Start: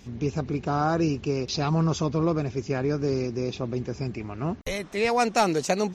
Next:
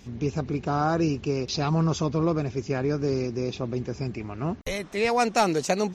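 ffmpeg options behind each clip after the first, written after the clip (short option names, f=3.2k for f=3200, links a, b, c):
-af anull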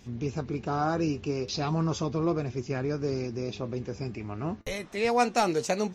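-af "flanger=delay=8.1:depth=2.2:regen=68:speed=0.38:shape=triangular,volume=1dB"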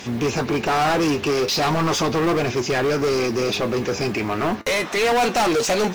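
-filter_complex "[0:a]asplit=2[a][b];[b]highpass=f=720:p=1,volume=31dB,asoftclip=type=tanh:threshold=-12dB[c];[a][c]amix=inputs=2:normalize=0,lowpass=f=4.6k:p=1,volume=-6dB,acrusher=bits=7:mode=log:mix=0:aa=0.000001"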